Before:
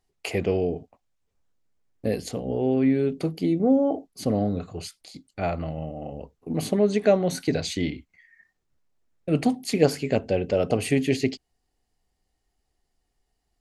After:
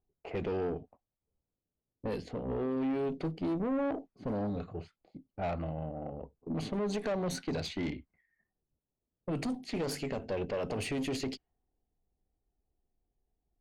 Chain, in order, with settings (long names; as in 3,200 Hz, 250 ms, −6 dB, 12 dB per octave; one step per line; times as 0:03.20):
low-pass that shuts in the quiet parts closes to 610 Hz, open at −18.5 dBFS
brickwall limiter −16 dBFS, peak gain reduction 11 dB
tube saturation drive 25 dB, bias 0.4
level −3 dB